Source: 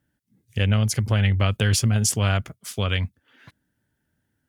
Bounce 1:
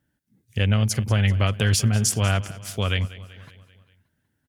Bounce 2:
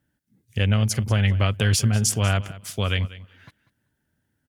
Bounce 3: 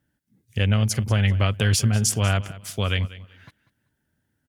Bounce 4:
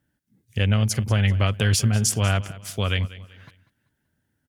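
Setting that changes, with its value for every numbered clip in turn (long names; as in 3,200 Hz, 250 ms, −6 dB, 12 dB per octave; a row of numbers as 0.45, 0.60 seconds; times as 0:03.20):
repeating echo, feedback: 56, 16, 25, 37%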